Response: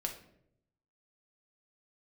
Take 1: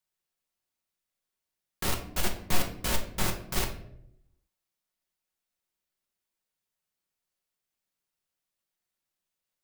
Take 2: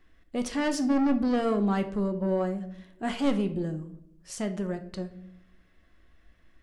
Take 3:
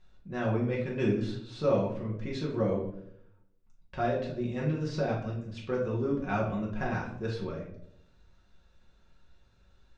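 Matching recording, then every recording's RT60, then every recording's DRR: 1; 0.75, 0.75, 0.75 s; 2.5, 7.0, -4.5 dB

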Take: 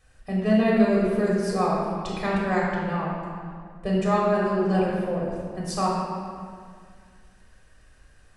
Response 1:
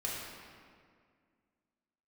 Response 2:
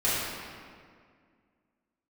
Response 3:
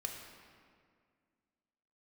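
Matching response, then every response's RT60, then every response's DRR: 1; 2.0, 2.0, 2.0 s; -5.5, -12.0, 1.5 dB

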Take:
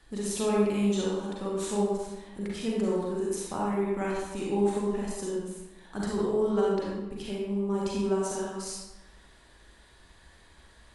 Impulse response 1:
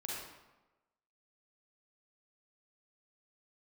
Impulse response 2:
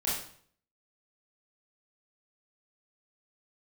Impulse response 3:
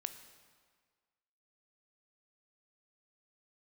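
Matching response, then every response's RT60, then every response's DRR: 1; 1.1, 0.55, 1.7 s; -5.0, -8.5, 9.0 dB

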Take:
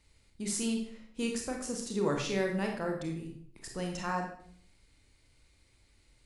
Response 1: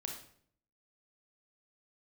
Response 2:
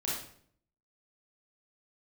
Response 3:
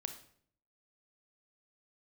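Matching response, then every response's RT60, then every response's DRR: 1; 0.60, 0.60, 0.60 s; 1.0, -6.5, 7.0 dB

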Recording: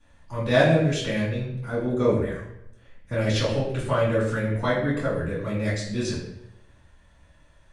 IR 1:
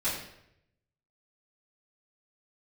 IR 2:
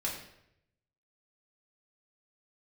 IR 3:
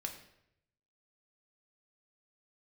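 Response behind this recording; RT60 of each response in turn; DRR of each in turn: 1; 0.75, 0.75, 0.75 s; -13.5, -4.5, 2.5 dB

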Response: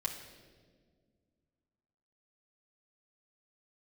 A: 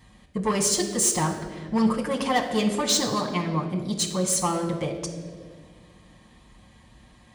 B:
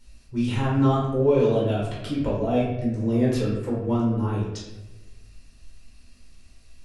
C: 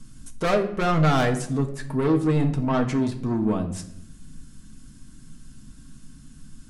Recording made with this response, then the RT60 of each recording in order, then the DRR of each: A; 1.7, 1.1, 0.75 s; -2.0, -6.5, 2.5 dB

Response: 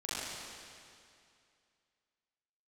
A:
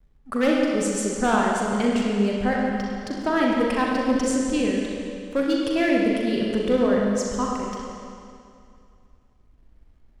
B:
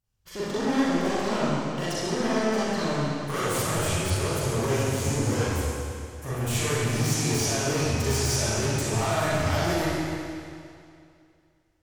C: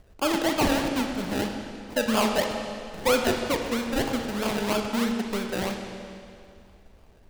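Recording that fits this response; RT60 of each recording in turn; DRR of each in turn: B; 2.4, 2.4, 2.4 s; -2.5, -11.0, 3.5 dB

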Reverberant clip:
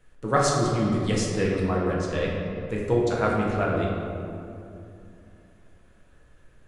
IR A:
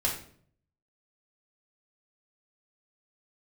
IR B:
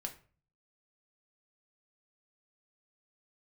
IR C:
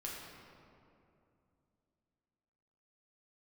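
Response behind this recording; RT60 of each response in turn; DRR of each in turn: C; 0.55, 0.40, 2.7 s; -4.5, 3.0, -4.5 dB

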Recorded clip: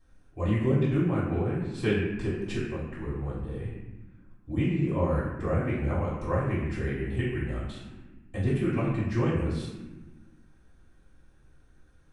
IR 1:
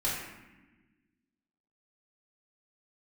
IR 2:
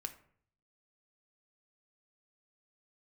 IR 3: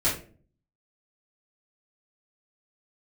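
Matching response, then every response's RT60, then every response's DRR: 1; 1.2, 0.55, 0.40 s; -9.0, 7.0, -10.0 dB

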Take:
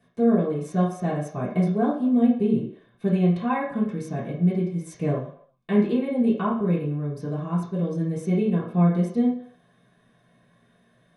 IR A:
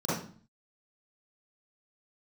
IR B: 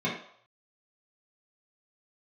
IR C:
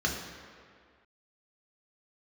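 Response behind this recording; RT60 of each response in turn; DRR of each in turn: B; 0.45, 0.65, 2.0 s; -11.0, -8.5, -1.0 dB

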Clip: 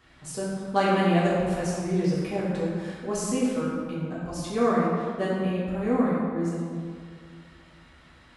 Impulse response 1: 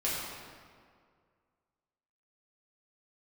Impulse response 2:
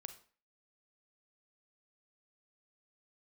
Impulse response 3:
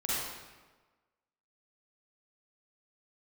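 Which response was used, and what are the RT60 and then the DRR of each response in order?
1; 2.0, 0.40, 1.3 s; -8.5, 8.5, -9.0 dB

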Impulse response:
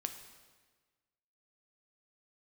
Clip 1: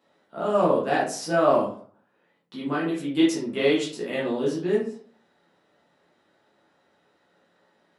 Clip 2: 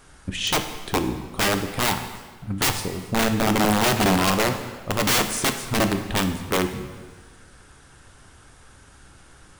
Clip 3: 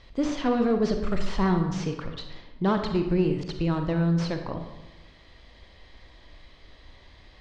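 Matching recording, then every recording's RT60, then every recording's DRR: 2; 0.45, 1.4, 1.0 s; -6.5, 6.5, 5.0 dB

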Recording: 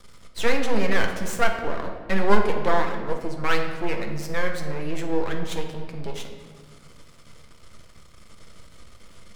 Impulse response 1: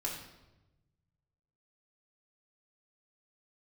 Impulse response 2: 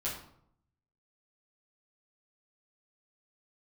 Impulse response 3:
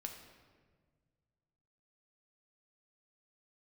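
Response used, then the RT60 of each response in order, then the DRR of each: 3; 1.0, 0.70, 1.6 s; -4.0, -9.0, 3.0 dB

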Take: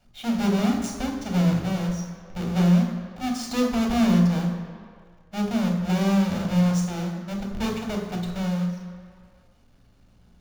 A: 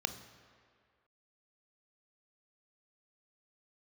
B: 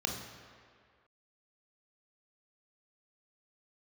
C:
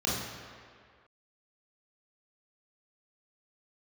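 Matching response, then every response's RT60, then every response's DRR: B; 2.0, 2.0, 2.0 s; 9.0, 1.0, -7.0 dB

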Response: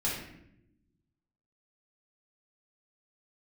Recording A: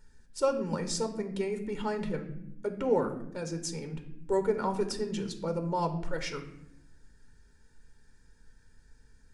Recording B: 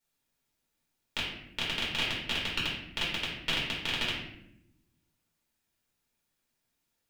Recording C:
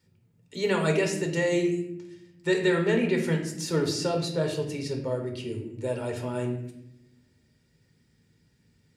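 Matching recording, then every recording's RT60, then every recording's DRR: B; not exponential, not exponential, not exponential; 6.5, -6.5, 2.5 dB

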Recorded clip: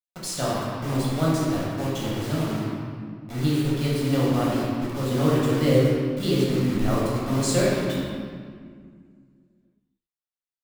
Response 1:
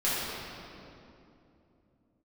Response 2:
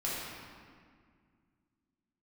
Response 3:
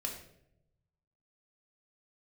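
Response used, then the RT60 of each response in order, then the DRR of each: 2; 2.8 s, 2.0 s, not exponential; -11.0, -7.5, 0.5 dB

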